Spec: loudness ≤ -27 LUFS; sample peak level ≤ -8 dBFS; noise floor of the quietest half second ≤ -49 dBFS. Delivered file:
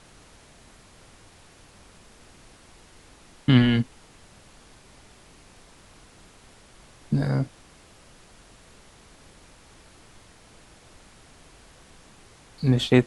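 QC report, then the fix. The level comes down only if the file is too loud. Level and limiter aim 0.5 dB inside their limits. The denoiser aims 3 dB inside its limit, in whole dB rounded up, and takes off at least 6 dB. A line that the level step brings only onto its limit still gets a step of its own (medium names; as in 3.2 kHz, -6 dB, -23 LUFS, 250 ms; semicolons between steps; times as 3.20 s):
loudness -23.5 LUFS: fail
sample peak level -4.0 dBFS: fail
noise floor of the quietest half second -52 dBFS: pass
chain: trim -4 dB; peak limiter -8.5 dBFS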